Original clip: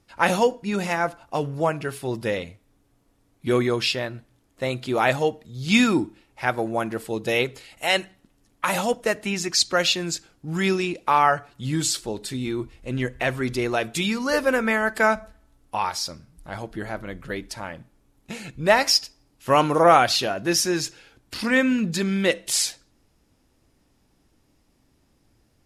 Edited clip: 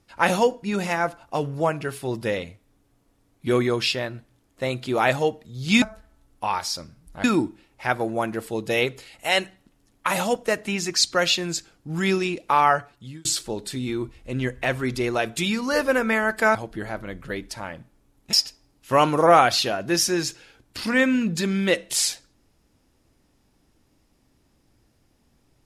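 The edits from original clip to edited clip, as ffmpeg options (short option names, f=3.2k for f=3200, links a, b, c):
-filter_complex "[0:a]asplit=6[a][b][c][d][e][f];[a]atrim=end=5.822[g];[b]atrim=start=15.128:end=16.552[h];[c]atrim=start=5.818:end=11.83,asetpts=PTS-STARTPTS,afade=t=out:st=5.502:d=0.51[i];[d]atrim=start=11.83:end=15.132,asetpts=PTS-STARTPTS,afade=t=in:d=0.004:c=hsin[j];[e]atrim=start=16.548:end=18.332[k];[f]atrim=start=18.898[l];[g][h]acrossfade=d=0.004:c1=hsin:c2=hsin[m];[i][j]concat=n=2:v=0:a=1[n];[m][n]acrossfade=d=0.004:c1=hsin:c2=hsin[o];[o][k]acrossfade=d=0.004:c1=hsin:c2=hsin[p];[p][l]acrossfade=d=0.004:c1=hsin:c2=hsin"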